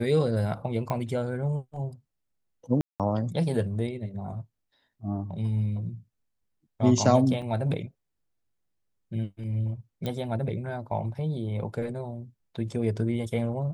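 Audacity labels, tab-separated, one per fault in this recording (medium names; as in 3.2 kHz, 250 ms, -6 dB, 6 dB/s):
0.900000	0.900000	pop -18 dBFS
2.810000	3.000000	dropout 187 ms
7.420000	7.420000	dropout 3.9 ms
10.060000	10.060000	pop -19 dBFS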